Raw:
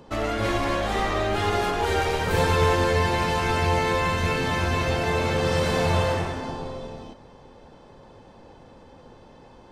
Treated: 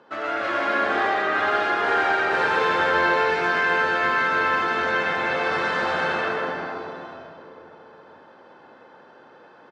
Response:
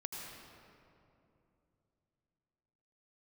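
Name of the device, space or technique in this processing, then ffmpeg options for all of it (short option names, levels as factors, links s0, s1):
station announcement: -filter_complex "[0:a]highpass=340,lowpass=4000,equalizer=f=1500:t=o:w=0.5:g=11.5,aecho=1:1:69.97|131.2:0.251|0.501[s0];[1:a]atrim=start_sample=2205[s1];[s0][s1]afir=irnorm=-1:irlink=0"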